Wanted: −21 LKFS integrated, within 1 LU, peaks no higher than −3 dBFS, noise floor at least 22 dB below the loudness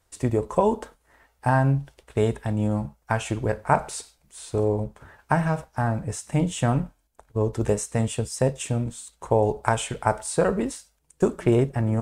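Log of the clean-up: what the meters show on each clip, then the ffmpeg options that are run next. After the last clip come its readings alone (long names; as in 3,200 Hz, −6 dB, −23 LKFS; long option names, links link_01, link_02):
integrated loudness −25.5 LKFS; sample peak −4.5 dBFS; target loudness −21.0 LKFS
→ -af "volume=4.5dB,alimiter=limit=-3dB:level=0:latency=1"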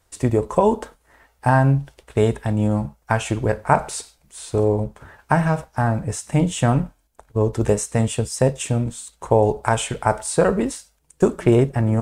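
integrated loudness −21.0 LKFS; sample peak −3.0 dBFS; background noise floor −64 dBFS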